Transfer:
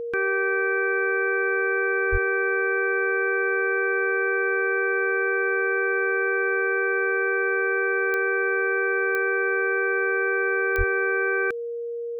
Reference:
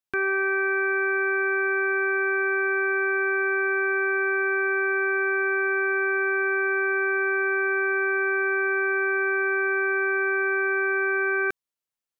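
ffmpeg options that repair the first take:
ffmpeg -i in.wav -filter_complex "[0:a]adeclick=threshold=4,bandreject=frequency=470:width=30,asplit=3[link_01][link_02][link_03];[link_01]afade=type=out:start_time=2.11:duration=0.02[link_04];[link_02]highpass=frequency=140:width=0.5412,highpass=frequency=140:width=1.3066,afade=type=in:start_time=2.11:duration=0.02,afade=type=out:start_time=2.23:duration=0.02[link_05];[link_03]afade=type=in:start_time=2.23:duration=0.02[link_06];[link_04][link_05][link_06]amix=inputs=3:normalize=0,asplit=3[link_07][link_08][link_09];[link_07]afade=type=out:start_time=10.77:duration=0.02[link_10];[link_08]highpass=frequency=140:width=0.5412,highpass=frequency=140:width=1.3066,afade=type=in:start_time=10.77:duration=0.02,afade=type=out:start_time=10.89:duration=0.02[link_11];[link_09]afade=type=in:start_time=10.89:duration=0.02[link_12];[link_10][link_11][link_12]amix=inputs=3:normalize=0" out.wav

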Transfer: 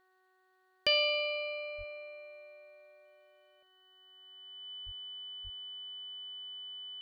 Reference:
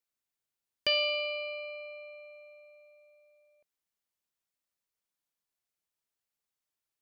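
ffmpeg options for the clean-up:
ffmpeg -i in.wav -filter_complex "[0:a]bandreject=frequency=373.2:width_type=h:width=4,bandreject=frequency=746.4:width_type=h:width=4,bandreject=frequency=1119.6:width_type=h:width=4,bandreject=frequency=1492.8:width_type=h:width=4,bandreject=frequency=1866:width_type=h:width=4,bandreject=frequency=3000:width=30,asplit=3[link_01][link_02][link_03];[link_01]afade=type=out:start_time=1.77:duration=0.02[link_04];[link_02]highpass=frequency=140:width=0.5412,highpass=frequency=140:width=1.3066,afade=type=in:start_time=1.77:duration=0.02,afade=type=out:start_time=1.89:duration=0.02[link_05];[link_03]afade=type=in:start_time=1.89:duration=0.02[link_06];[link_04][link_05][link_06]amix=inputs=3:normalize=0,asplit=3[link_07][link_08][link_09];[link_07]afade=type=out:start_time=4.85:duration=0.02[link_10];[link_08]highpass=frequency=140:width=0.5412,highpass=frequency=140:width=1.3066,afade=type=in:start_time=4.85:duration=0.02,afade=type=out:start_time=4.97:duration=0.02[link_11];[link_09]afade=type=in:start_time=4.97:duration=0.02[link_12];[link_10][link_11][link_12]amix=inputs=3:normalize=0,asplit=3[link_13][link_14][link_15];[link_13]afade=type=out:start_time=5.43:duration=0.02[link_16];[link_14]highpass=frequency=140:width=0.5412,highpass=frequency=140:width=1.3066,afade=type=in:start_time=5.43:duration=0.02,afade=type=out:start_time=5.55:duration=0.02[link_17];[link_15]afade=type=in:start_time=5.55:duration=0.02[link_18];[link_16][link_17][link_18]amix=inputs=3:normalize=0,agate=range=-21dB:threshold=-63dB" out.wav

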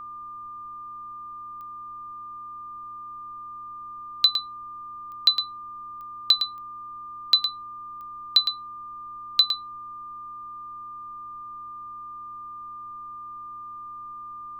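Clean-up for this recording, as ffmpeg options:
ffmpeg -i in.wav -af "adeclick=threshold=4,bandreject=frequency=108.7:width_type=h:width=4,bandreject=frequency=217.4:width_type=h:width=4,bandreject=frequency=326.1:width_type=h:width=4,bandreject=frequency=1200:width=30,agate=range=-21dB:threshold=-31dB" out.wav

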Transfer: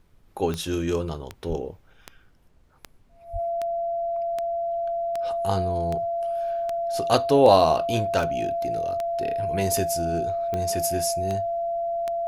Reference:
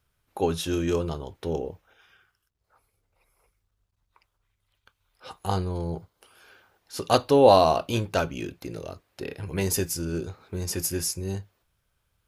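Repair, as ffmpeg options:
ffmpeg -i in.wav -filter_complex "[0:a]adeclick=threshold=4,bandreject=frequency=680:width=30,asplit=3[link_01][link_02][link_03];[link_01]afade=type=out:start_time=1.48:duration=0.02[link_04];[link_02]highpass=frequency=140:width=0.5412,highpass=frequency=140:width=1.3066,afade=type=in:start_time=1.48:duration=0.02,afade=type=out:start_time=1.6:duration=0.02[link_05];[link_03]afade=type=in:start_time=1.6:duration=0.02[link_06];[link_04][link_05][link_06]amix=inputs=3:normalize=0,asplit=3[link_07][link_08][link_09];[link_07]afade=type=out:start_time=3.32:duration=0.02[link_10];[link_08]highpass=frequency=140:width=0.5412,highpass=frequency=140:width=1.3066,afade=type=in:start_time=3.32:duration=0.02,afade=type=out:start_time=3.44:duration=0.02[link_11];[link_09]afade=type=in:start_time=3.44:duration=0.02[link_12];[link_10][link_11][link_12]amix=inputs=3:normalize=0,agate=range=-21dB:threshold=-46dB" out.wav

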